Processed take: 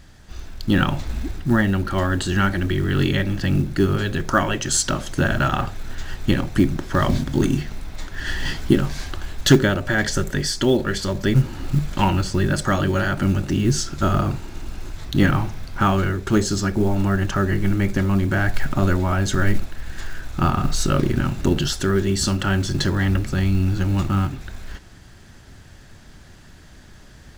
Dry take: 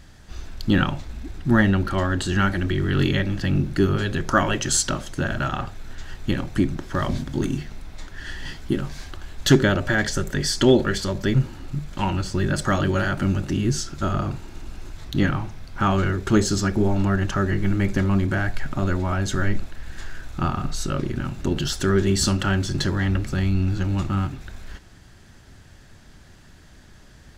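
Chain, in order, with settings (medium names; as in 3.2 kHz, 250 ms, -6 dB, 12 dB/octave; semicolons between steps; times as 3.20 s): short-mantissa float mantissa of 4-bit; gain riding 0.5 s; trim +2 dB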